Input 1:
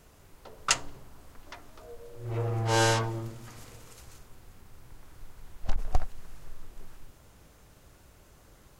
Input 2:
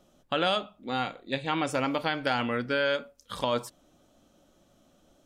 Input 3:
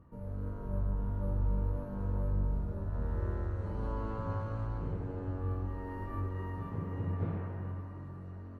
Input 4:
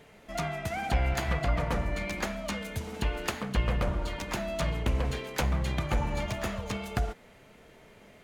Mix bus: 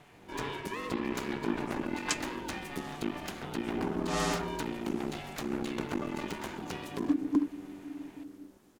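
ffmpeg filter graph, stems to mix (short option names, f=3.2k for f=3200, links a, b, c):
-filter_complex "[0:a]adelay=1400,volume=-4.5dB[a];[1:a]volume=-16dB[b];[2:a]volume=-12.5dB[c];[3:a]equalizer=f=210:w=4.6:g=-14,alimiter=limit=-19.5dB:level=0:latency=1:release=217,aeval=exprs='clip(val(0),-1,0.01)':c=same,volume=1dB[d];[a][b][c][d]amix=inputs=4:normalize=0,aeval=exprs='val(0)*sin(2*PI*290*n/s)':c=same"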